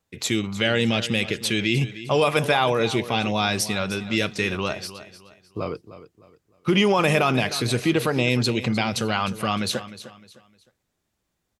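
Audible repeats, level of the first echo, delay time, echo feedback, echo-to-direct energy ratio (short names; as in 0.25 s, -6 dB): 3, -14.5 dB, 0.306 s, 33%, -14.0 dB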